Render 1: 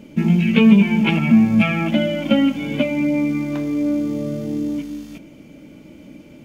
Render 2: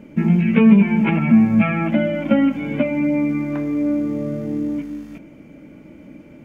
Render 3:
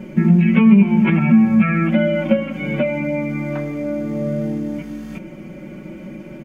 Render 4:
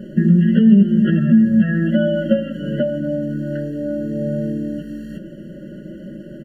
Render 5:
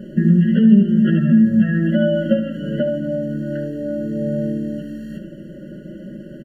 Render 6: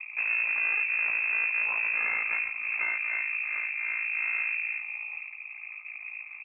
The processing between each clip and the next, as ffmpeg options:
-filter_complex "[0:a]acrossover=split=3000[s0][s1];[s1]acompressor=threshold=0.00708:ratio=4:attack=1:release=60[s2];[s0][s2]amix=inputs=2:normalize=0,highshelf=f=2600:t=q:w=1.5:g=-8"
-af "acompressor=threshold=0.0158:ratio=1.5,aecho=1:1:5.4:0.96,volume=2"
-af "afftfilt=real='re*eq(mod(floor(b*sr/1024/670),2),0)':imag='im*eq(mod(floor(b*sr/1024/670),2),0)':win_size=1024:overlap=0.75"
-af "aecho=1:1:73:0.299,volume=0.891"
-af "aeval=exprs='(tanh(17.8*val(0)+0.75)-tanh(0.75))/17.8':c=same,aeval=exprs='val(0)*sin(2*PI*28*n/s)':c=same,lowpass=f=2300:t=q:w=0.5098,lowpass=f=2300:t=q:w=0.6013,lowpass=f=2300:t=q:w=0.9,lowpass=f=2300:t=q:w=2.563,afreqshift=-2700"

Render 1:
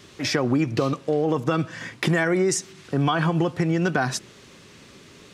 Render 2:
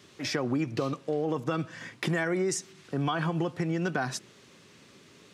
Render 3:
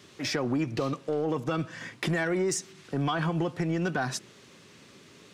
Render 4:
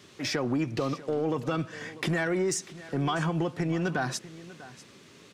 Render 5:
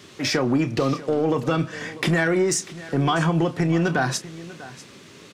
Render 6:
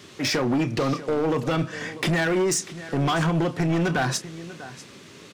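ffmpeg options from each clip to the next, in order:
-af "highpass=98,volume=0.447"
-af "asoftclip=type=tanh:threshold=0.0891,volume=1.26"
-af "aecho=1:1:644:0.133"
-filter_complex "[0:a]asplit=2[s0][s1];[s1]adelay=30,volume=0.251[s2];[s0][s2]amix=inputs=2:normalize=0,volume=2.24"
-af "asoftclip=type=hard:threshold=0.112"

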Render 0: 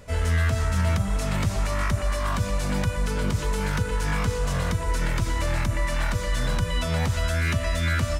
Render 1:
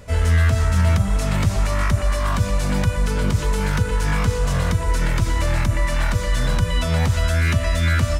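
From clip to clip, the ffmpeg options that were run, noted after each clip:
-af "equalizer=f=75:t=o:w=2.1:g=3,volume=1.5"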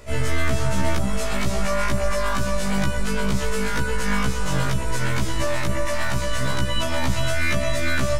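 -filter_complex "[0:a]acrossover=split=330[s0][s1];[s0]aeval=exprs='max(val(0),0)':c=same[s2];[s2][s1]amix=inputs=2:normalize=0,afftfilt=real='re*1.73*eq(mod(b,3),0)':imag='im*1.73*eq(mod(b,3),0)':win_size=2048:overlap=0.75,volume=1.41"

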